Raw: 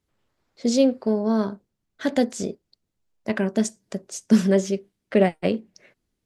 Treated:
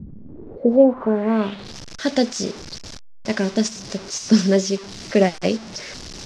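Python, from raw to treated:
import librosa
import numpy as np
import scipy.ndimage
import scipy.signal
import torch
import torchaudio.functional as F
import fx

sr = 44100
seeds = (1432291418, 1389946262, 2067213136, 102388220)

y = fx.delta_mod(x, sr, bps=64000, step_db=-33.0)
y = fx.filter_sweep_lowpass(y, sr, from_hz=200.0, to_hz=5400.0, start_s=0.15, end_s=1.76, q=3.4)
y = y * 10.0 ** (2.0 / 20.0)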